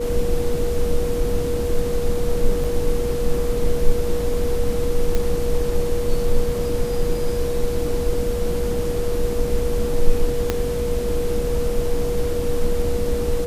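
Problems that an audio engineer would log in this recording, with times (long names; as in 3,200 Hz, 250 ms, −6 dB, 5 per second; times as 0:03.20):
whistle 480 Hz −23 dBFS
0:02.64: drop-out 4 ms
0:05.15: click −9 dBFS
0:10.50: click −6 dBFS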